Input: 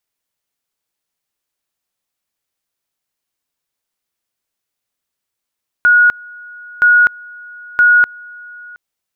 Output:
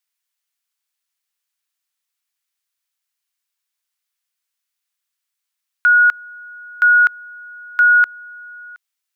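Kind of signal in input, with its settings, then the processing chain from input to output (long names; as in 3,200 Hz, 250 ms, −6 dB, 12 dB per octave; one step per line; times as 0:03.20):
tone at two levels in turn 1,450 Hz −5.5 dBFS, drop 25.5 dB, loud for 0.25 s, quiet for 0.72 s, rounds 3
high-pass filter 1,300 Hz 12 dB per octave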